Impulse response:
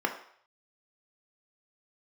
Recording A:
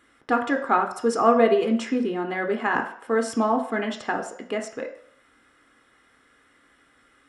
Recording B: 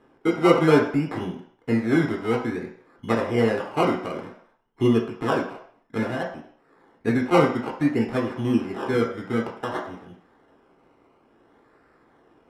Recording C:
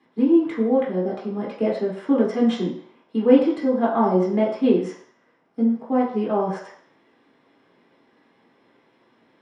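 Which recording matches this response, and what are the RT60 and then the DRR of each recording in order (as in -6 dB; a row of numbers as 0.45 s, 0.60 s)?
A; 0.60 s, 0.60 s, 0.60 s; 3.0 dB, -1.0 dB, -5.5 dB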